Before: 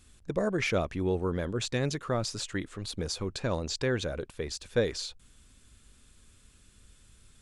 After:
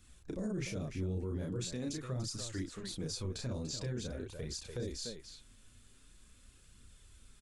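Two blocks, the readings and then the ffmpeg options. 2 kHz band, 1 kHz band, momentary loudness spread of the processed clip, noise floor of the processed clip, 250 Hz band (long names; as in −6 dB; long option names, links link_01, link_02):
−14.5 dB, −16.0 dB, 5 LU, −61 dBFS, −6.0 dB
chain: -filter_complex "[0:a]aecho=1:1:32.07|291.5:0.794|0.282,acrossover=split=350|5000[link_01][link_02][link_03];[link_02]acompressor=threshold=-43dB:ratio=5[link_04];[link_01][link_04][link_03]amix=inputs=3:normalize=0,flanger=delay=0.5:depth=9:regen=-33:speed=0.44:shape=triangular,alimiter=level_in=5dB:limit=-24dB:level=0:latency=1:release=14,volume=-5dB,volume=-1dB"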